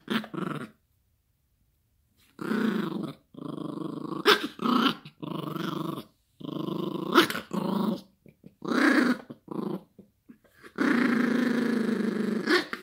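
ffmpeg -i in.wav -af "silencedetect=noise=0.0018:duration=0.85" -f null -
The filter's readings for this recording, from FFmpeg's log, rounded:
silence_start: 0.73
silence_end: 2.18 | silence_duration: 1.45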